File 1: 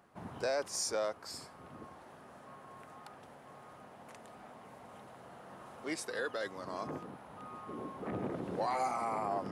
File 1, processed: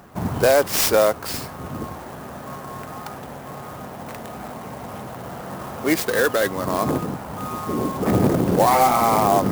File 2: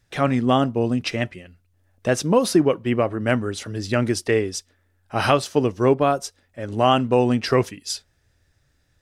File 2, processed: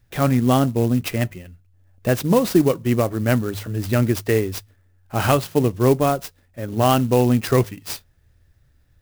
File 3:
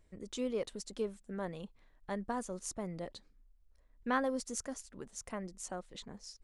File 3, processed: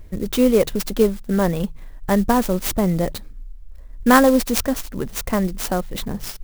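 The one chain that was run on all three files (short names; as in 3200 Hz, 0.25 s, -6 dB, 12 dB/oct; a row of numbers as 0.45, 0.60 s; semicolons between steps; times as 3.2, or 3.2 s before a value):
low shelf 160 Hz +11 dB; de-hum 51.35 Hz, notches 3; clock jitter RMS 0.037 ms; match loudness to -20 LUFS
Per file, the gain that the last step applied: +17.0, -1.0, +18.5 dB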